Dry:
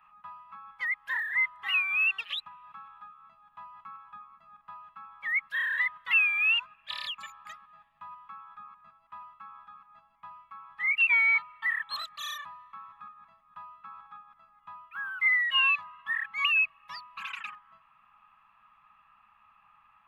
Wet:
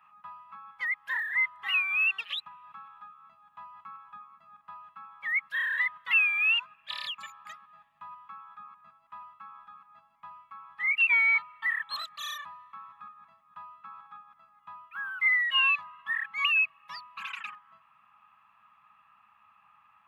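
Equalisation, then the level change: high-pass 87 Hz 12 dB/octave; 0.0 dB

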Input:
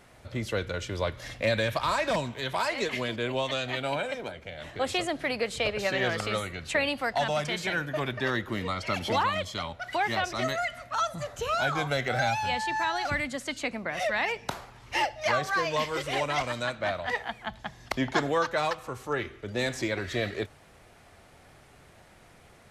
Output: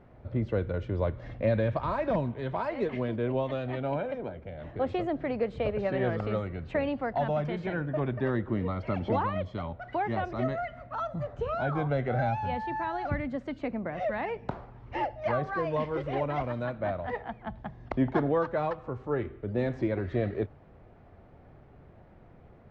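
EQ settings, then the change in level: tape spacing loss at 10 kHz 39 dB; tilt shelf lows +5 dB; 0.0 dB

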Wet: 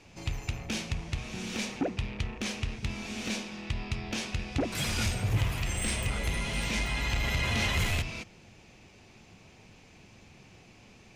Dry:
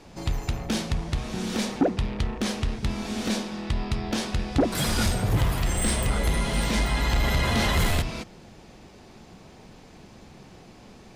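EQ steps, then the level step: fifteen-band graphic EQ 100 Hz +7 dB, 2.5 kHz +11 dB, 6.3 kHz +6 dB; -9.0 dB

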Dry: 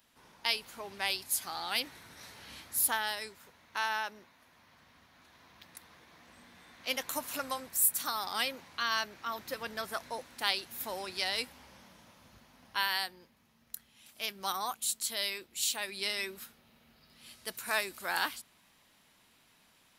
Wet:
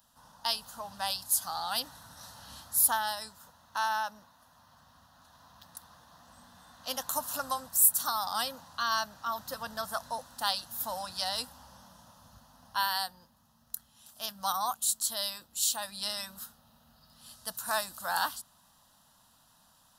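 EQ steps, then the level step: static phaser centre 930 Hz, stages 4; +5.0 dB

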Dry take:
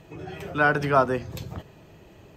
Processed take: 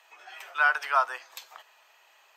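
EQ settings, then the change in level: high-pass 890 Hz 24 dB/octave; 0.0 dB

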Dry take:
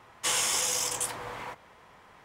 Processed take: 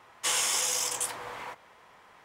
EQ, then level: bass shelf 260 Hz -9 dB; 0.0 dB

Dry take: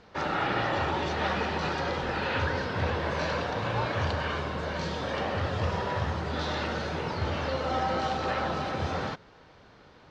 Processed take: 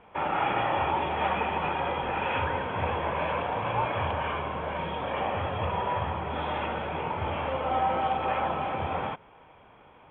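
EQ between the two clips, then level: rippled Chebyshev low-pass 3.4 kHz, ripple 9 dB; +5.5 dB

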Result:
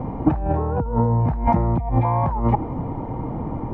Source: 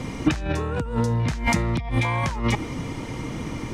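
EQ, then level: resonant low-pass 830 Hz, resonance Q 3.6; bass shelf 240 Hz +6 dB; -1.0 dB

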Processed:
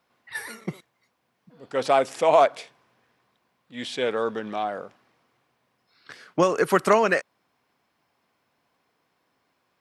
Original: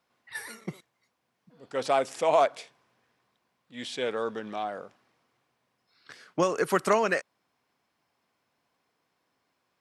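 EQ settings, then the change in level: peaking EQ 7.3 kHz -3.5 dB 1.5 oct; +5.0 dB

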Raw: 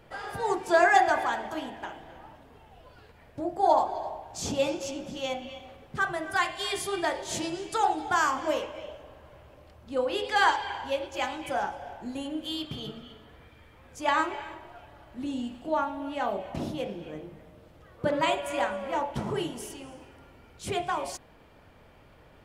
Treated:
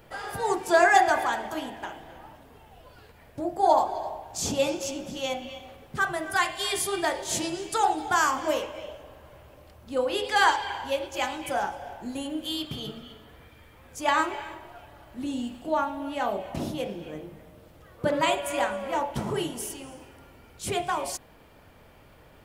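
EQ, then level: treble shelf 8.7 kHz +11.5 dB; +1.5 dB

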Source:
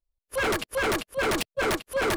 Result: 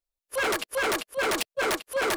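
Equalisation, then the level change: tone controls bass -12 dB, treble +2 dB; 0.0 dB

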